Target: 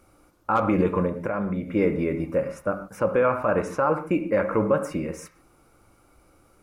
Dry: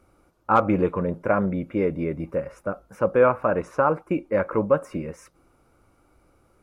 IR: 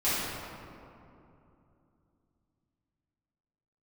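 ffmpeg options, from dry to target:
-filter_complex "[0:a]highshelf=frequency=2700:gain=8.5,alimiter=limit=-13.5dB:level=0:latency=1:release=35,asplit=2[link_01][link_02];[1:a]atrim=start_sample=2205,atrim=end_sample=6615,lowpass=2800[link_03];[link_02][link_03]afir=irnorm=-1:irlink=0,volume=-16dB[link_04];[link_01][link_04]amix=inputs=2:normalize=0,asettb=1/sr,asplit=3[link_05][link_06][link_07];[link_05]atrim=end=1.074[link_08];[link_06]atrim=start=1.07:end=1.75,asetpts=PTS-STARTPTS,afade=type=in:duration=0.004:curve=qsin,afade=type=out:start_time=0.676:duration=0.004:curve=qsin,acompressor=threshold=-26dB:ratio=2.5[link_09];[link_07]atrim=start=1.746[link_10];[link_08][link_09]acrossfade=duration=0.004:curve1=hsin:curve2=qsin[link_11];[link_11][link_10]acrossfade=duration=0.004:curve1=qsin:curve2=hsin"

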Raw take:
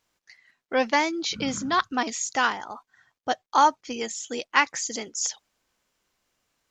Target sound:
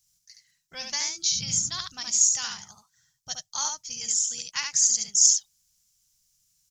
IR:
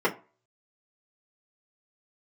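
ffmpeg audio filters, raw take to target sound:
-af "firequalizer=gain_entry='entry(170,0);entry(260,-29);entry(430,-27);entry(870,-21);entry(5600,9)':delay=0.05:min_phase=1,aecho=1:1:71:0.596,volume=1dB"

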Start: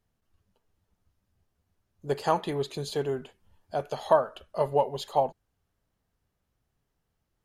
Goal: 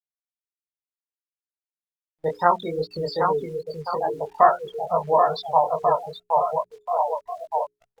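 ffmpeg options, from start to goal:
ffmpeg -i in.wav -af "aecho=1:1:720|1332|1852|2294|2670:0.631|0.398|0.251|0.158|0.1,asetrate=41013,aresample=44100,tiltshelf=frequency=840:gain=-4,afftfilt=real='re*gte(hypot(re,im),0.0631)':imag='im*gte(hypot(re,im),0.0631)':win_size=1024:overlap=0.75,asetrate=52444,aresample=44100,atempo=0.840896,dynaudnorm=framelen=200:gausssize=9:maxgain=14dB,agate=range=-32dB:threshold=-34dB:ratio=16:detection=peak,acrusher=bits=9:dc=4:mix=0:aa=0.000001,highshelf=frequency=7400:gain=-6,flanger=delay=17:depth=6.9:speed=2.4,bandreject=frequency=60:width_type=h:width=6,bandreject=frequency=120:width_type=h:width=6,bandreject=frequency=180:width_type=h:width=6,bandreject=frequency=240:width_type=h:width=6,bandreject=frequency=300:width_type=h:width=6,bandreject=frequency=360:width_type=h:width=6,bandreject=frequency=420:width_type=h:width=6" -ar 48000 -c:a libopus -b:a 64k out.opus

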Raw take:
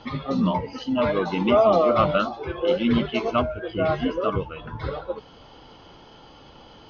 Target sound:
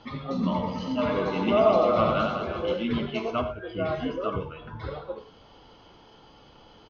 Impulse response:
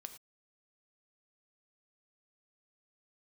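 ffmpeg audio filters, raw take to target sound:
-filter_complex "[0:a]asplit=3[link_01][link_02][link_03];[link_01]afade=type=out:start_time=0.42:duration=0.02[link_04];[link_02]aecho=1:1:90|207|359.1|556.8|813.9:0.631|0.398|0.251|0.158|0.1,afade=type=in:start_time=0.42:duration=0.02,afade=type=out:start_time=2.73:duration=0.02[link_05];[link_03]afade=type=in:start_time=2.73:duration=0.02[link_06];[link_04][link_05][link_06]amix=inputs=3:normalize=0[link_07];[1:a]atrim=start_sample=2205[link_08];[link_07][link_08]afir=irnorm=-1:irlink=0"

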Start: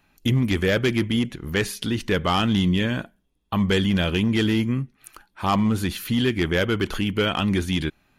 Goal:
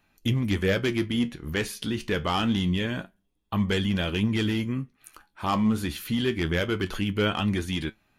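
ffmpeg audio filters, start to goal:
ffmpeg -i in.wav -af "flanger=delay=9:depth=4.9:regen=61:speed=0.26:shape=sinusoidal" out.wav

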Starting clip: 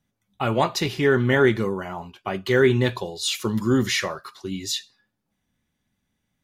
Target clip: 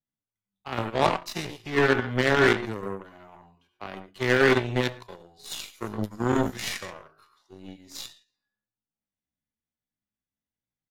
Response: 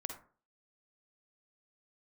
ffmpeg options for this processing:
-filter_complex "[1:a]atrim=start_sample=2205,atrim=end_sample=3969[link_01];[0:a][link_01]afir=irnorm=-1:irlink=0,aeval=exprs='0.473*(cos(1*acos(clip(val(0)/0.473,-1,1)))-cos(1*PI/2))+0.00841*(cos(2*acos(clip(val(0)/0.473,-1,1)))-cos(2*PI/2))+0.0188*(cos(4*acos(clip(val(0)/0.473,-1,1)))-cos(4*PI/2))+0.0596*(cos(7*acos(clip(val(0)/0.473,-1,1)))-cos(7*PI/2))+0.00473*(cos(8*acos(clip(val(0)/0.473,-1,1)))-cos(8*PI/2))':channel_layout=same,acrossover=split=500[link_02][link_03];[link_02]alimiter=limit=-18dB:level=0:latency=1:release=56[link_04];[link_04][link_03]amix=inputs=2:normalize=0,atempo=0.59,asplit=2[link_05][link_06];[link_06]acrusher=bits=2:mix=0:aa=0.5,volume=-10.5dB[link_07];[link_05][link_07]amix=inputs=2:normalize=0" -ar 44100 -c:a aac -b:a 64k

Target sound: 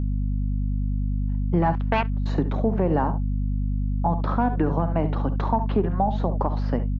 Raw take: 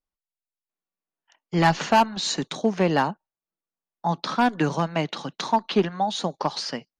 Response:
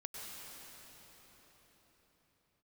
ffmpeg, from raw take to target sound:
-filter_complex "[0:a]lowpass=1000,aecho=1:1:52|71:0.141|0.2,alimiter=limit=-17.5dB:level=0:latency=1:release=202,asettb=1/sr,asplit=3[link_01][link_02][link_03];[link_01]atrim=end=1.754[link_04];[link_02]atrim=start=1.75:end=2.26,asetpts=PTS-STARTPTS,afade=type=in:duration=0.004:curve=qsin,afade=type=out:start_time=0.506:duration=0.004:curve=qsin,aeval=exprs='0.133*(cos(1*acos(clip(val(0)/0.133,-1,1)))-cos(1*PI/2))+0.0473*(cos(3*acos(clip(val(0)/0.133,-1,1)))-cos(3*PI/2))':channel_layout=same[link_05];[link_03]atrim=start=2.256[link_06];[link_04][link_05]acrossfade=duration=0.004:curve1=hsin:curve2=qsin[link_07];[link_07][link_06]acrossfade=duration=0.004:curve1=qsin:curve2=hsin,aeval=exprs='val(0)+0.0355*(sin(2*PI*50*n/s)+sin(2*PI*2*50*n/s)/2+sin(2*PI*3*50*n/s)/3+sin(2*PI*4*50*n/s)/4+sin(2*PI*5*50*n/s)/5)':channel_layout=same,asplit=2[link_08][link_09];[link_09]acompressor=threshold=-26dB:ratio=6,volume=1dB[link_10];[link_08][link_10]amix=inputs=2:normalize=0"

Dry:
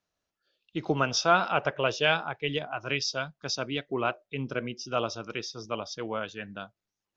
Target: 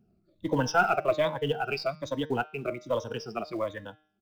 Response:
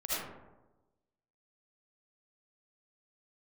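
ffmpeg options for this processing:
-filter_complex "[0:a]afftfilt=real='re*pow(10,20/40*sin(2*PI*(1.1*log(max(b,1)*sr/1024/100)/log(2)-(-0.72)*(pts-256)/sr)))':imag='im*pow(10,20/40*sin(2*PI*(1.1*log(max(b,1)*sr/1024/100)/log(2)-(-0.72)*(pts-256)/sr)))':win_size=1024:overlap=0.75,acrossover=split=290|490|2100[link_01][link_02][link_03][link_04];[link_01]acompressor=mode=upward:threshold=-41dB:ratio=2.5[link_05];[link_05][link_02][link_03][link_04]amix=inputs=4:normalize=0,acrusher=bits=5:mode=log:mix=0:aa=0.000001,aeval=exprs='0.531*(cos(1*acos(clip(val(0)/0.531,-1,1)))-cos(1*PI/2))+0.0266*(cos(5*acos(clip(val(0)/0.531,-1,1)))-cos(5*PI/2))+0.0075*(cos(8*acos(clip(val(0)/0.531,-1,1)))-cos(8*PI/2))':channel_layout=same,highshelf=frequency=2500:gain=-11.5,atempo=1.7,equalizer=frequency=640:width_type=o:width=0.77:gain=3,bandreject=frequency=153.6:width_type=h:width=4,bandreject=frequency=307.2:width_type=h:width=4,bandreject=frequency=460.8:width_type=h:width=4,bandreject=frequency=614.4:width_type=h:width=4,bandreject=frequency=768:width_type=h:width=4,bandreject=frequency=921.6:width_type=h:width=4,bandreject=frequency=1075.2:width_type=h:width=4,bandreject=frequency=1228.8:width_type=h:width=4,bandreject=frequency=1382.4:width_type=h:width=4,bandreject=frequency=1536:width_type=h:width=4,bandreject=frequency=1689.6:width_type=h:width=4,bandreject=frequency=1843.2:width_type=h:width=4,bandreject=frequency=1996.8:width_type=h:width=4,bandreject=frequency=2150.4:width_type=h:width=4,bandreject=frequency=2304:width_type=h:width=4,bandreject=frequency=2457.6:width_type=h:width=4,bandreject=frequency=2611.2:width_type=h:width=4,bandreject=frequency=2764.8:width_type=h:width=4,bandreject=frequency=2918.4:width_type=h:width=4,bandreject=frequency=3072:width_type=h:width=4,bandreject=frequency=3225.6:width_type=h:width=4,bandreject=frequency=3379.2:width_type=h:width=4,bandreject=frequency=3532.8:width_type=h:width=4,bandreject=frequency=3686.4:width_type=h:width=4,bandreject=frequency=3840:width_type=h:width=4,bandreject=frequency=3993.6:width_type=h:width=4,bandreject=frequency=4147.2:width_type=h:width=4,bandreject=frequency=4300.8:width_type=h:width=4,bandreject=frequency=4454.4:width_type=h:width=4,bandreject=frequency=4608:width_type=h:width=4,bandreject=frequency=4761.6:width_type=h:width=4,bandreject=frequency=4915.2:width_type=h:width=4,bandreject=frequency=5068.8:width_type=h:width=4,bandreject=frequency=5222.4:width_type=h:width=4,bandreject=frequency=5376:width_type=h:width=4,bandreject=frequency=5529.6:width_type=h:width=4,bandreject=frequency=5683.2:width_type=h:width=4,bandreject=frequency=5836.8:width_type=h:width=4,bandreject=frequency=5990.4:width_type=h:width=4,volume=-4dB"

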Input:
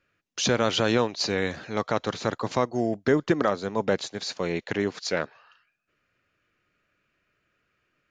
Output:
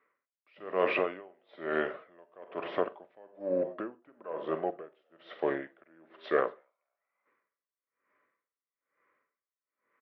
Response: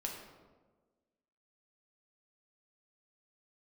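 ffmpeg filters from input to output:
-filter_complex "[0:a]bandreject=frequency=1100:width=20,asplit=2[link_01][link_02];[link_02]asoftclip=type=tanh:threshold=-21.5dB,volume=-7.5dB[link_03];[link_01][link_03]amix=inputs=2:normalize=0,asetrate=35721,aresample=44100,highpass=440,equalizer=frequency=600:width_type=q:width=4:gain=9,equalizer=frequency=870:width_type=q:width=4:gain=-4,equalizer=frequency=1400:width_type=q:width=4:gain=-4,lowpass=frequency=2200:width=0.5412,lowpass=frequency=2200:width=1.3066,asplit=3[link_04][link_05][link_06];[link_05]adelay=237,afreqshift=73,volume=-22.5dB[link_07];[link_06]adelay=474,afreqshift=146,volume=-31.9dB[link_08];[link_04][link_07][link_08]amix=inputs=3:normalize=0,asplit=2[link_09][link_10];[1:a]atrim=start_sample=2205,atrim=end_sample=4410,adelay=43[link_11];[link_10][link_11]afir=irnorm=-1:irlink=0,volume=-10.5dB[link_12];[link_09][link_12]amix=inputs=2:normalize=0,aeval=exprs='val(0)*pow(10,-32*(0.5-0.5*cos(2*PI*1.1*n/s))/20)':channel_layout=same"

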